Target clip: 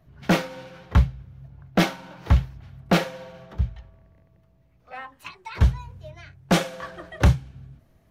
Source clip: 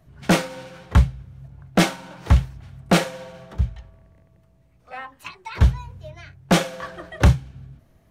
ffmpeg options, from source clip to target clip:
-af "asetnsamples=n=441:p=0,asendcmd='4.95 equalizer g -2.5',equalizer=f=8.5k:w=1.6:g=-11,volume=-2dB" -ar 48000 -c:a libmp3lame -b:a 80k

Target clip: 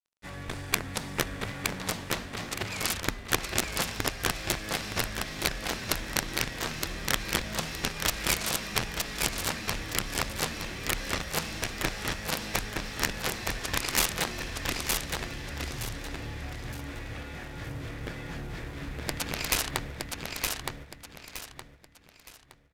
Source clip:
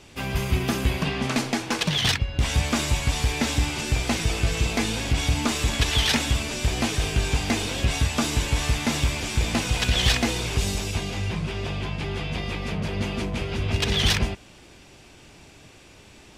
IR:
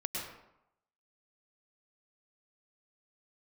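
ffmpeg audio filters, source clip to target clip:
-filter_complex "[0:a]highshelf=f=11k:g=-2,acrossover=split=480|2200[a][b][c];[a]acrusher=bits=3:mode=log:mix=0:aa=0.000001[d];[d][b][c]amix=inputs=3:normalize=0,aeval=exprs='sgn(val(0))*max(abs(val(0))-0.0106,0)':c=same,aeval=exprs='0.422*(cos(1*acos(clip(val(0)/0.422,-1,1)))-cos(1*PI/2))+0.15*(cos(3*acos(clip(val(0)/0.422,-1,1)))-cos(3*PI/2))+0.00944*(cos(7*acos(clip(val(0)/0.422,-1,1)))-cos(7*PI/2))':c=same,aeval=exprs='(mod(8.91*val(0)+1,2)-1)/8.91':c=same,asetrate=31752,aresample=44100,asplit=2[e][f];[f]aecho=0:1:917|1834|2751|3668:0.668|0.214|0.0684|0.0219[g];[e][g]amix=inputs=2:normalize=0,volume=6dB"

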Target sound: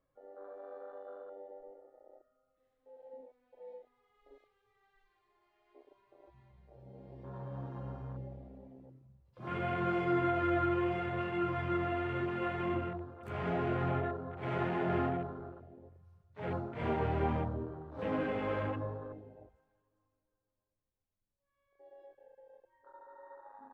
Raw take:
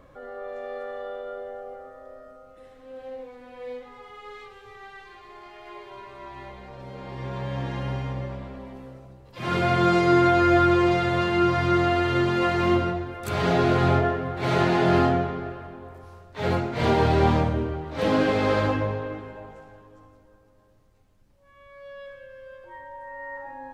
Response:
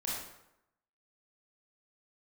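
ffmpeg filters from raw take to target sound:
-af "flanger=delay=5.9:depth=9.5:regen=-56:speed=0.79:shape=triangular,afwtdn=0.0141,volume=-8.5dB"

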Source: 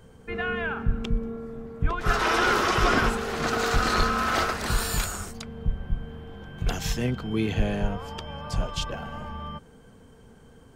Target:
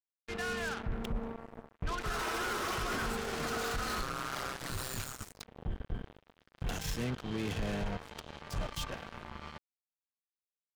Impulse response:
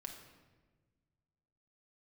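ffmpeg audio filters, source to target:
-filter_complex "[0:a]alimiter=limit=-19.5dB:level=0:latency=1:release=17,asettb=1/sr,asplit=3[a][b][c];[a]atrim=end=4.024[d];[b]atrim=start=4.02:end=5.21,asetpts=PTS-STARTPTS,afade=t=in:d=0.004:c=qsin,afade=t=out:st=1.186:d=0.004:c=qsin,aeval=exprs='val(0)*sin(2*PI*65*n/s)':c=same[e];[c]atrim=start=5.206[f];[d][e]acrossfade=d=0.004:c1=hsin:c2=qsin[g];[g][f]acrossfade=d=0.004:c1=qsin:c2=hsin,acrusher=bits=4:mix=0:aa=0.5,volume=-7.5dB"

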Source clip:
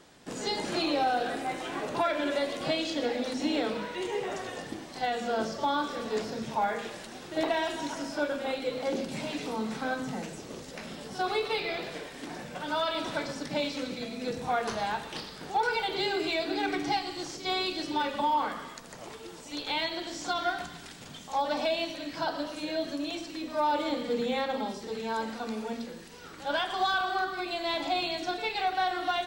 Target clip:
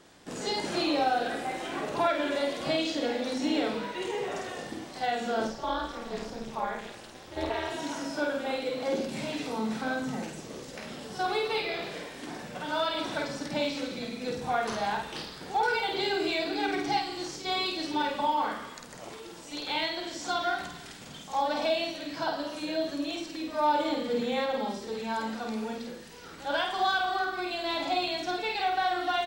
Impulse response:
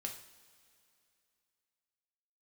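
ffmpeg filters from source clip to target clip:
-filter_complex "[0:a]asettb=1/sr,asplit=3[a][b][c];[a]atrim=end=5.474[d];[b]atrim=start=5.47:end=7.72,asetpts=PTS-STARTPTS,afade=t=in:d=0.004:c=qsin,afade=t=out:st=2.246:d=0.004:c=qsin,tremolo=f=240:d=1[e];[c]atrim=start=7.716[f];[d][e]acrossfade=d=0.004:c1=hsin:c2=qsin[g];[g][f]acrossfade=d=0.004:c1=qsin:c2=hsin,asplit=2[h][i];[i]adelay=50,volume=-3.5dB[j];[h][j]amix=inputs=2:normalize=0,volume=-1dB"

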